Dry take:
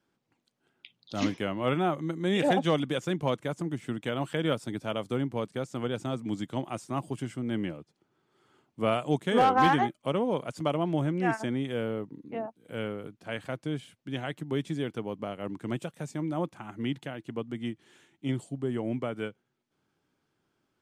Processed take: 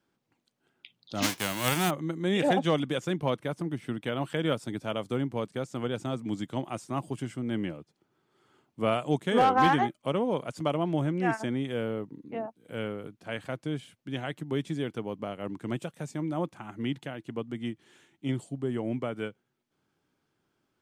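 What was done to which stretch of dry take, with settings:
1.22–1.89 spectral whitening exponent 0.3
3.18–4.3 bell 7100 Hz -10.5 dB 0.28 oct

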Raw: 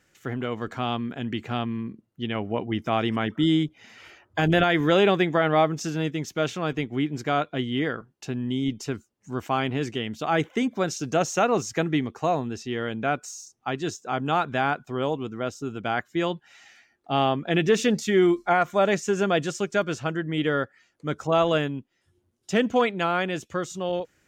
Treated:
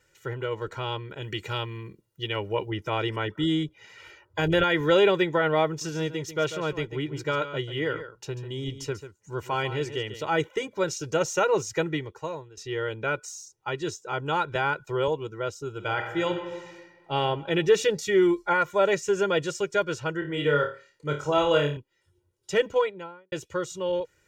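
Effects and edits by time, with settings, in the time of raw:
1.22–2.71 high shelf 3400 Hz +11 dB
5.67–10.29 echo 0.142 s -11.5 dB
11.86–12.57 fade out, to -18 dB
14.55–15.08 three-band squash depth 70%
15.73–17.15 reverb throw, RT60 1.4 s, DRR 4.5 dB
20.19–21.77 flutter echo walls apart 4.7 m, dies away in 0.34 s
22.56–23.32 studio fade out
whole clip: comb 2.1 ms, depth 100%; gain -4 dB

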